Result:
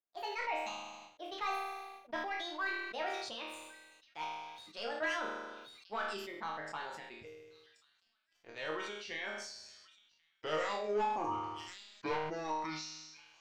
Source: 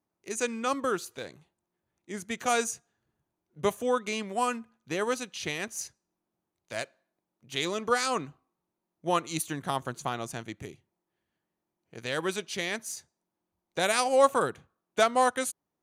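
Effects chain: gliding tape speed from 181% -> 55%; peaking EQ 150 Hz -12 dB 2.3 oct; in parallel at -5 dB: saturation -19 dBFS, distortion -16 dB; on the sum: hum notches 60/120/180/240 Hz; on a send: feedback echo behind a high-pass 1082 ms, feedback 64%, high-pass 3.3 kHz, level -19 dB; on the sum: reverb removal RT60 1.5 s; waveshaping leveller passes 2; distance through air 190 m; chord resonator D#2 sus4, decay 0.5 s; decay stretcher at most 37 dB/s; trim -1 dB

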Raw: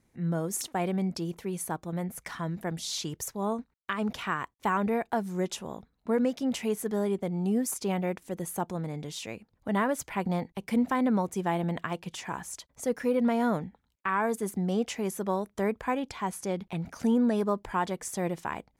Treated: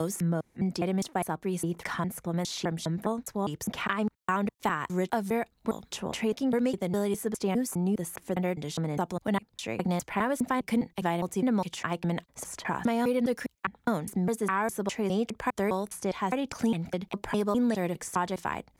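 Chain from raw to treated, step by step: slices played last to first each 204 ms, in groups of 3; three bands compressed up and down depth 70%

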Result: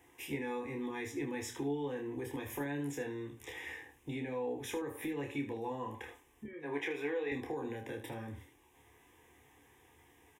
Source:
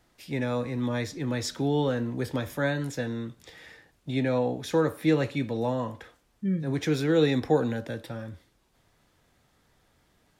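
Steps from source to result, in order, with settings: high-pass 78 Hz; hum notches 60/120 Hz; 6.45–7.32 s: three-band isolator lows -20 dB, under 450 Hz, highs -15 dB, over 3.1 kHz; peak limiter -21.5 dBFS, peak gain reduction 10 dB; compression, threshold -39 dBFS, peak gain reduction 13 dB; static phaser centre 910 Hz, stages 8; early reflections 14 ms -9 dB, 28 ms -5 dB, 77 ms -11.5 dB; trim +5 dB

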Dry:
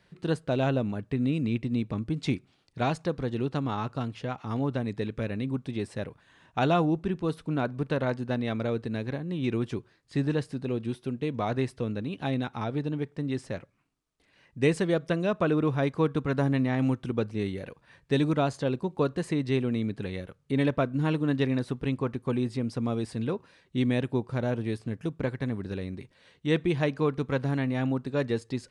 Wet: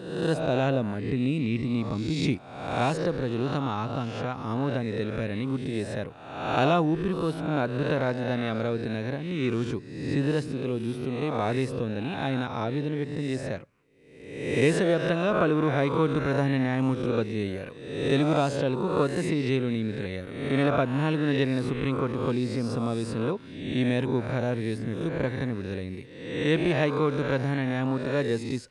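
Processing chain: reverse spectral sustain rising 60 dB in 0.95 s

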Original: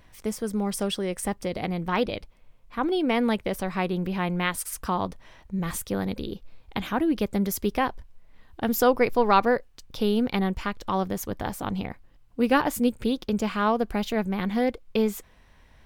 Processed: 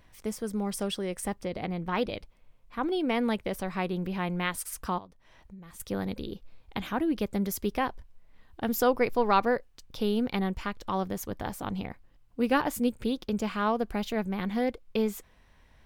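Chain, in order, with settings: 1.42–1.97 s: treble shelf 6.1 kHz -9 dB; 4.98–5.80 s: compression 5:1, threshold -43 dBFS, peak gain reduction 17.5 dB; trim -4 dB

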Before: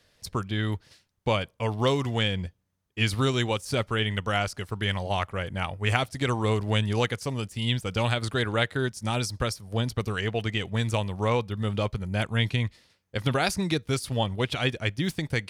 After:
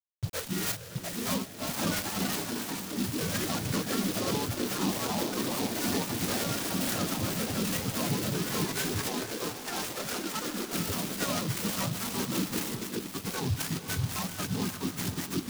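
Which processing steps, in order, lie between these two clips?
spectrum inverted on a logarithmic axis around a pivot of 780 Hz; gain riding within 4 dB 2 s; peak limiter -21 dBFS, peak gain reduction 10 dB; harmonic tremolo 3.7 Hz, depth 50%, crossover 990 Hz; bit crusher 7-bit; echo that smears into a reverb 503 ms, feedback 42%, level -9 dB; ever faster or slower copies 771 ms, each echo +4 st, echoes 2; 9.08–10.73 s: band-pass 300–4900 Hz; delay time shaken by noise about 3.9 kHz, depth 0.11 ms

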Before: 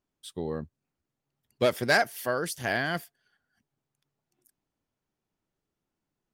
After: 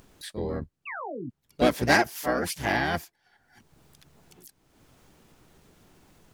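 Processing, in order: painted sound fall, 0.87–1.30 s, 220–2400 Hz -38 dBFS; harmony voices -12 st -3 dB, +3 st -5 dB; upward compressor, threshold -37 dBFS

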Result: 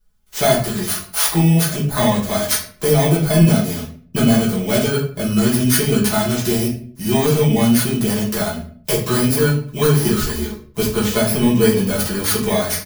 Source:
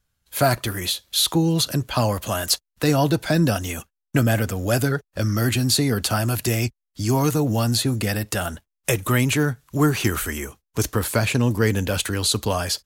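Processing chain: bit-reversed sample order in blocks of 16 samples; comb 4.7 ms, depth 61%; simulated room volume 48 m³, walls mixed, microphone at 1.2 m; trim -3.5 dB

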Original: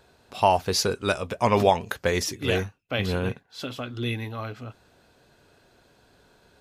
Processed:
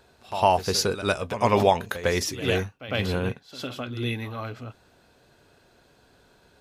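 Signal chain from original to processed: pre-echo 104 ms -12.5 dB

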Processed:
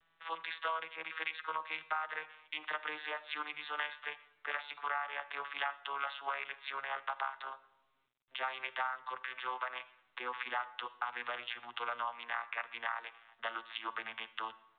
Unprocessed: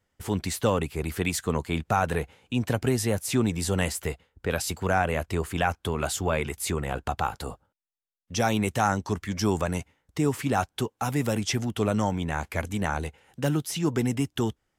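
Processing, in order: vocoder on a note that slides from E3, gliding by -7 st; Chebyshev high-pass 1.1 kHz, order 3; compression 8:1, threshold -45 dBFS, peak gain reduction 12.5 dB; reverberation RT60 0.70 s, pre-delay 38 ms, DRR 16 dB; trim +12 dB; µ-law 64 kbps 8 kHz

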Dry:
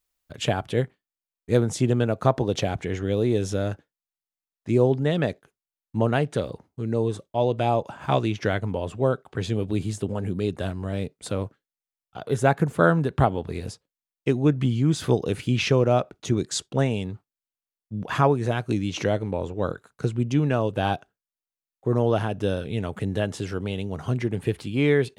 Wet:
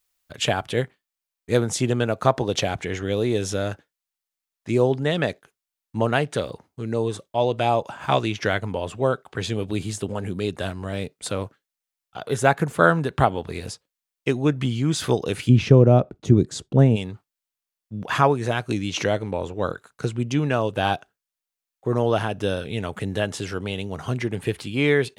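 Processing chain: tilt shelf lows -4 dB, about 640 Hz, from 15.48 s lows +7.5 dB, from 16.95 s lows -3.5 dB; trim +2 dB

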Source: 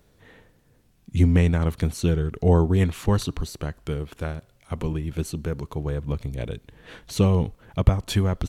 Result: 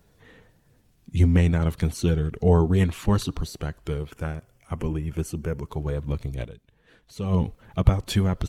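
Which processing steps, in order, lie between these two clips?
coarse spectral quantiser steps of 15 dB; 4.11–5.69 s: peaking EQ 3.9 kHz -14.5 dB 0.3 oct; 6.42–7.34 s: dip -12.5 dB, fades 0.46 s exponential

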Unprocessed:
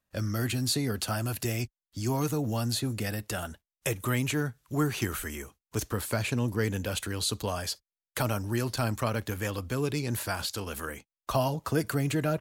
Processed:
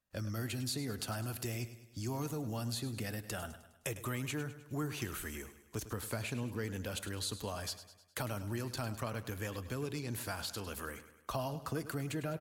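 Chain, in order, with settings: compression 2:1, threshold -32 dBFS, peak gain reduction 6.5 dB; on a send: feedback delay 103 ms, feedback 51%, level -13.5 dB; on the sum: trim -5.5 dB

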